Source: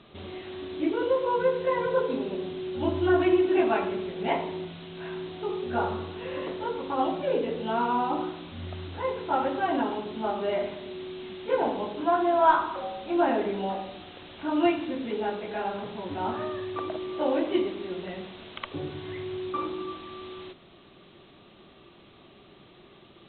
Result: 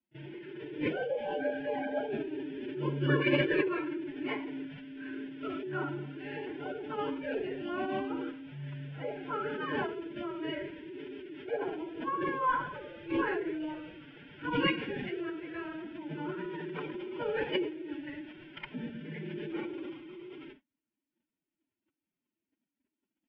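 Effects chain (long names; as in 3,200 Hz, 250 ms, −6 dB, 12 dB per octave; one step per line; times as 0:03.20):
Butterworth low-pass 3,600 Hz 72 dB per octave
noise gate −48 dBFS, range −33 dB
low-shelf EQ 98 Hz −2.5 dB
phaser with its sweep stopped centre 1,800 Hz, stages 4
phase-vocoder pitch shift with formants kept +8 semitones
backwards echo 33 ms −21 dB
level −1.5 dB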